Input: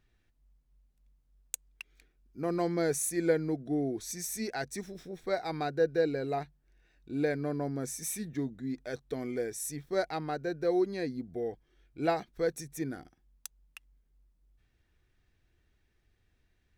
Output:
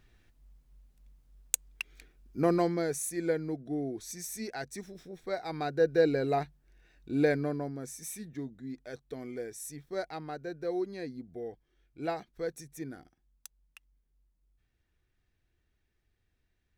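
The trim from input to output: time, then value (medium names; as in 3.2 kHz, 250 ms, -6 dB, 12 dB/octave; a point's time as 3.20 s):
2.41 s +8 dB
2.87 s -3 dB
5.39 s -3 dB
6.07 s +4 dB
7.33 s +4 dB
7.78 s -5 dB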